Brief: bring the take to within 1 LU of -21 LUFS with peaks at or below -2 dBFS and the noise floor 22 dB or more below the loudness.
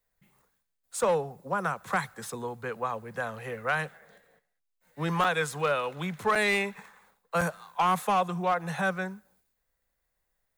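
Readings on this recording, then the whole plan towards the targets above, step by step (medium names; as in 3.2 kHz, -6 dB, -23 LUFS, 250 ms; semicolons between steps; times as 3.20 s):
clipped samples 0.4%; clipping level -18.5 dBFS; dropouts 3; longest dropout 5.2 ms; loudness -29.5 LUFS; peak level -18.5 dBFS; loudness target -21.0 LUFS
-> clip repair -18.5 dBFS; interpolate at 5.24/6.35/7.41 s, 5.2 ms; trim +8.5 dB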